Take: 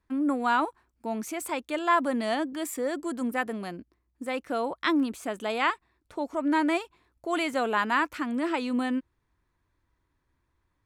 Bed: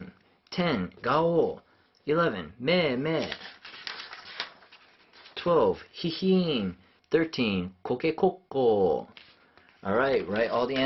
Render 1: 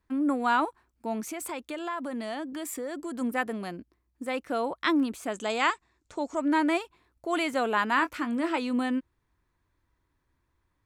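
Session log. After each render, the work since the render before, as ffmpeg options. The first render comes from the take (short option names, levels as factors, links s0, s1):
-filter_complex "[0:a]asettb=1/sr,asplit=3[s0][s1][s2];[s0]atrim=end=1.204[s3];[s1]atrim=start=1.2:end=3.15,asetpts=PTS-STARTPTS,afade=t=in:d=0.004:c=qsin,afade=t=out:st=1.946:d=0.004:c=qsin,acompressor=threshold=0.0282:ratio=4:attack=3.2:release=140:knee=1:detection=peak[s4];[s2]atrim=start=3.146[s5];[s3][s4]acrossfade=d=0.004:c1=hsin:c2=qsin[s6];[s6][s5]acrossfade=d=0.004:c1=qsin:c2=hsin,asettb=1/sr,asplit=3[s7][s8][s9];[s7]atrim=end=5.324[s10];[s8]atrim=start=5.32:end=6.45,asetpts=PTS-STARTPTS,afade=t=in:d=0.004:c=qsin,afade=t=out:st=1.126:d=0.004:c=qsin,lowpass=f=7100:t=q:w=3.7[s11];[s9]atrim=start=6.446[s12];[s10][s11]acrossfade=d=0.004:c1=hsin:c2=qsin[s13];[s13][s12]acrossfade=d=0.004:c1=qsin:c2=hsin,asettb=1/sr,asplit=3[s14][s15][s16];[s14]atrim=end=7.954[s17];[s15]atrim=start=7.95:end=8.58,asetpts=PTS-STARTPTS,afade=t=in:d=0.004:c=qsin,afade=t=out:st=0.626:d=0.004:c=qsin,asplit=2[s18][s19];[s19]adelay=22,volume=0.282[s20];[s18][s20]amix=inputs=2:normalize=0,atrim=end_sample=27783[s21];[s16]atrim=start=8.576[s22];[s17][s21]acrossfade=d=0.004:c1=hsin:c2=qsin[s23];[s23][s22]acrossfade=d=0.004:c1=qsin:c2=hsin"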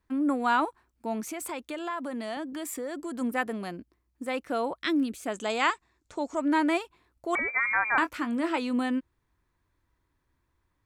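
-filter_complex "[0:a]asettb=1/sr,asplit=3[s0][s1][s2];[s0]atrim=end=1.904[s3];[s1]atrim=start=1.9:end=2.37,asetpts=PTS-STARTPTS,afade=t=in:d=0.004:c=qsin,afade=t=out:st=0.466:d=0.004:c=qsin,highpass=150[s4];[s2]atrim=start=2.366[s5];[s3][s4]acrossfade=d=0.004:c1=hsin:c2=qsin[s6];[s6][s5]acrossfade=d=0.004:c1=qsin:c2=hsin,asettb=1/sr,asplit=3[s7][s8][s9];[s7]atrim=end=4.804[s10];[s8]atrim=start=4.8:end=5.26,asetpts=PTS-STARTPTS,afade=t=in:d=0.004:c=qsin,afade=t=out:st=0.456:d=0.004:c=qsin,equalizer=f=970:t=o:w=0.95:g=-14.5[s11];[s9]atrim=start=5.256[s12];[s10][s11]acrossfade=d=0.004:c1=hsin:c2=qsin[s13];[s13][s12]acrossfade=d=0.004:c1=qsin:c2=hsin,asettb=1/sr,asplit=3[s14][s15][s16];[s14]atrim=end=7.354[s17];[s15]atrim=start=7.35:end=7.98,asetpts=PTS-STARTPTS,afade=t=in:d=0.004:c=qsin,afade=t=out:st=0.626:d=0.004:c=qsin,lowpass=f=2200:t=q:w=0.5098,lowpass=f=2200:t=q:w=0.6013,lowpass=f=2200:t=q:w=0.9,lowpass=f=2200:t=q:w=2.563,afreqshift=-2600[s18];[s16]atrim=start=7.976[s19];[s17][s18]acrossfade=d=0.004:c1=hsin:c2=qsin[s20];[s20][s19]acrossfade=d=0.004:c1=qsin:c2=hsin"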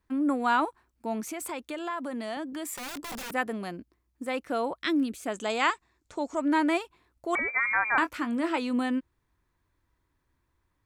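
-filter_complex "[0:a]asettb=1/sr,asplit=3[s0][s1][s2];[s0]atrim=end=2.754[s3];[s1]atrim=start=2.75:end=3.31,asetpts=PTS-STARTPTS,afade=t=in:d=0.004:c=qsin,afade=t=out:st=0.556:d=0.004:c=qsin,aeval=exprs='(mod(44.7*val(0)+1,2)-1)/44.7':c=same[s4];[s2]atrim=start=3.306[s5];[s3][s4]acrossfade=d=0.004:c1=hsin:c2=qsin[s6];[s6][s5]acrossfade=d=0.004:c1=qsin:c2=hsin"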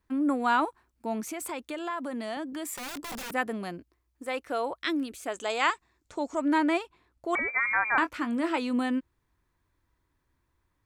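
-filter_complex "[0:a]asettb=1/sr,asplit=3[s0][s1][s2];[s0]atrim=end=3.784[s3];[s1]atrim=start=3.78:end=5.72,asetpts=PTS-STARTPTS,afade=t=in:d=0.004:c=qsin,afade=t=out:st=1.936:d=0.004:c=qsin,equalizer=f=200:t=o:w=0.77:g=-11.5[s4];[s2]atrim=start=5.716[s5];[s3][s4]acrossfade=d=0.004:c1=hsin:c2=qsin[s6];[s6][s5]acrossfade=d=0.004:c1=qsin:c2=hsin,asettb=1/sr,asplit=3[s7][s8][s9];[s7]atrim=end=6.584[s10];[s8]atrim=start=6.58:end=8.21,asetpts=PTS-STARTPTS,afade=t=in:d=0.004:c=qsin,afade=t=out:st=1.626:d=0.004:c=qsin,highshelf=f=8900:g=-8.5[s11];[s9]atrim=start=8.206[s12];[s10][s11]acrossfade=d=0.004:c1=hsin:c2=qsin[s13];[s13][s12]acrossfade=d=0.004:c1=qsin:c2=hsin"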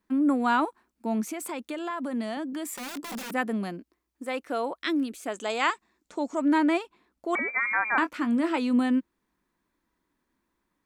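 -af "lowshelf=f=150:t=q:w=3:g=-9.5"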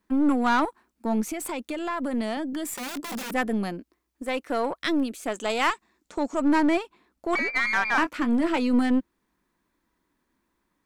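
-filter_complex "[0:a]asplit=2[s0][s1];[s1]asoftclip=type=hard:threshold=0.0422,volume=0.398[s2];[s0][s2]amix=inputs=2:normalize=0,aeval=exprs='0.316*(cos(1*acos(clip(val(0)/0.316,-1,1)))-cos(1*PI/2))+0.0251*(cos(6*acos(clip(val(0)/0.316,-1,1)))-cos(6*PI/2))':c=same"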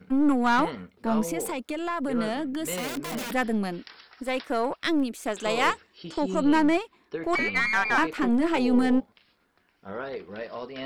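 -filter_complex "[1:a]volume=0.316[s0];[0:a][s0]amix=inputs=2:normalize=0"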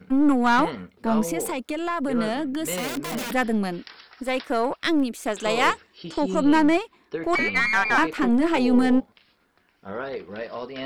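-af "volume=1.41"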